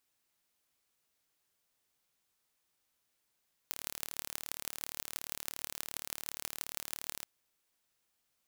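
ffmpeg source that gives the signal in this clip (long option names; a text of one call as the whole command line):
ffmpeg -f lavfi -i "aevalsrc='0.398*eq(mod(n,1185),0)*(0.5+0.5*eq(mod(n,7110),0))':duration=3.54:sample_rate=44100" out.wav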